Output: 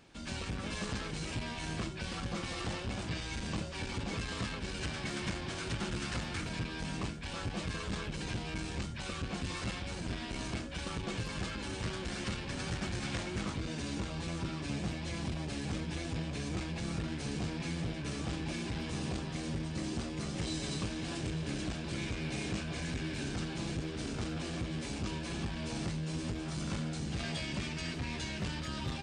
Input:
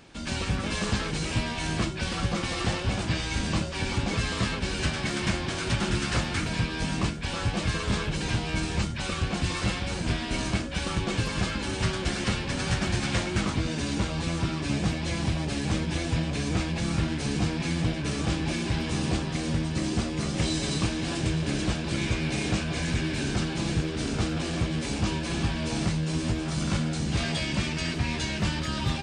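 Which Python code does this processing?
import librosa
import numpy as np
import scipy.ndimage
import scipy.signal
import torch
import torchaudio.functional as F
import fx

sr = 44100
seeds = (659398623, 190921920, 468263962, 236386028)

y = fx.transformer_sat(x, sr, knee_hz=200.0)
y = y * 10.0 ** (-8.0 / 20.0)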